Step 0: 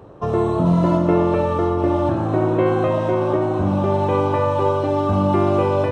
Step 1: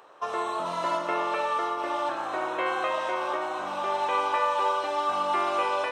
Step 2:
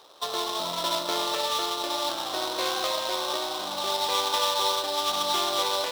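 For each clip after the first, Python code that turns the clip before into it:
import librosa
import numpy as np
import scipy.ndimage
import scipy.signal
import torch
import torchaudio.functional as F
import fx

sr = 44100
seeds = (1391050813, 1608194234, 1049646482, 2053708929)

y1 = scipy.signal.sosfilt(scipy.signal.butter(2, 1200.0, 'highpass', fs=sr, output='sos'), x)
y1 = y1 * librosa.db_to_amplitude(3.0)
y2 = fx.high_shelf(y1, sr, hz=2100.0, db=-12.0)
y2 = fx.sample_hold(y2, sr, seeds[0], rate_hz=4600.0, jitter_pct=20)
y2 = fx.peak_eq(y2, sr, hz=4100.0, db=12.0, octaves=0.86)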